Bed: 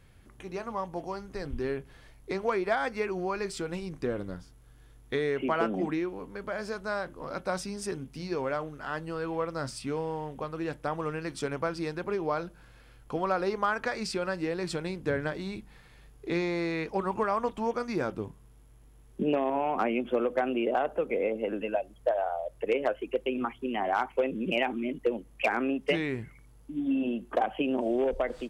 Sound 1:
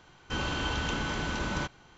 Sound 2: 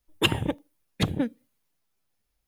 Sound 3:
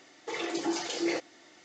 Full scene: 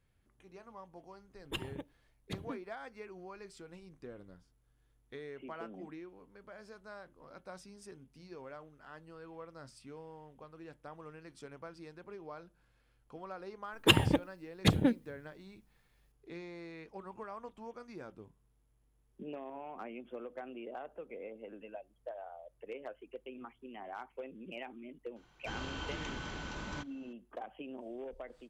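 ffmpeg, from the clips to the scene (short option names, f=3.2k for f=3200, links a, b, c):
-filter_complex "[2:a]asplit=2[a][b];[0:a]volume=-17dB[c];[1:a]flanger=delay=0.5:depth=7:regen=-61:speed=1.8:shape=triangular[d];[a]atrim=end=2.47,asetpts=PTS-STARTPTS,volume=-17dB,afade=t=in:d=0.004:c=hsin,afade=t=out:st=2.466:d=0.004:c=hsin,adelay=1300[e];[b]atrim=end=2.47,asetpts=PTS-STARTPTS,volume=-1dB,afade=t=in:d=0.004:c=hsin,afade=t=out:st=2.466:d=0.004:c=hsin,adelay=13650[f];[d]atrim=end=1.97,asetpts=PTS-STARTPTS,volume=-6dB,afade=t=in:d=0.004:c=hsin,afade=t=out:st=1.966:d=0.004:c=hsin,adelay=25160[g];[c][e][f][g]amix=inputs=4:normalize=0"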